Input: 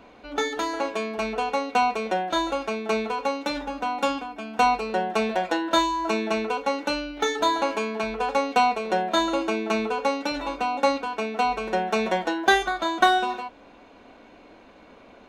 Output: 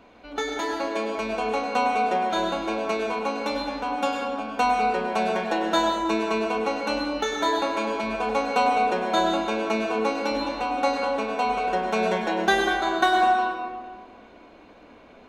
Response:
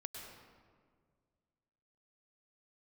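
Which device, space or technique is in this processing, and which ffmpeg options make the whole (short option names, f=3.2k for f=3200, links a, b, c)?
stairwell: -filter_complex "[1:a]atrim=start_sample=2205[a];[0:a][a]afir=irnorm=-1:irlink=0,volume=2.5dB"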